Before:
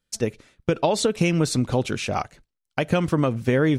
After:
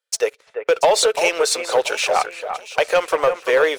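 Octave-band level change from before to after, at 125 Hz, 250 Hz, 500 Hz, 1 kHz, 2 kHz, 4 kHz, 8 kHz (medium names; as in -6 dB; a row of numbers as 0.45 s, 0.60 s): under -20 dB, -14.0 dB, +7.0 dB, +8.0 dB, +8.5 dB, +8.5 dB, +8.5 dB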